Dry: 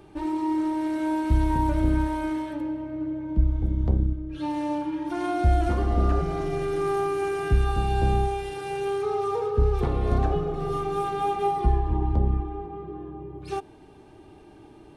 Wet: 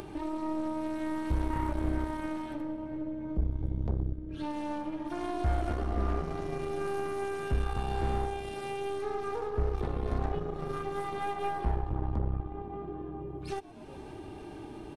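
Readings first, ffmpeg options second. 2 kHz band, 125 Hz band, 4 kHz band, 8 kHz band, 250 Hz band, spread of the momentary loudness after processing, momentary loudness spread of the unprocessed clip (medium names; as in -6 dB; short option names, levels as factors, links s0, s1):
-5.5 dB, -8.5 dB, -6.0 dB, -6.0 dB, -7.5 dB, 8 LU, 8 LU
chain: -filter_complex "[0:a]asplit=7[s0][s1][s2][s3][s4][s5][s6];[s1]adelay=119,afreqshift=-83,volume=0.112[s7];[s2]adelay=238,afreqshift=-166,volume=0.0716[s8];[s3]adelay=357,afreqshift=-249,volume=0.0457[s9];[s4]adelay=476,afreqshift=-332,volume=0.0295[s10];[s5]adelay=595,afreqshift=-415,volume=0.0188[s11];[s6]adelay=714,afreqshift=-498,volume=0.012[s12];[s0][s7][s8][s9][s10][s11][s12]amix=inputs=7:normalize=0,aeval=exprs='0.282*(cos(1*acos(clip(val(0)/0.282,-1,1)))-cos(1*PI/2))+0.0355*(cos(6*acos(clip(val(0)/0.282,-1,1)))-cos(6*PI/2))':c=same,acompressor=mode=upward:threshold=0.0891:ratio=2.5,volume=0.355"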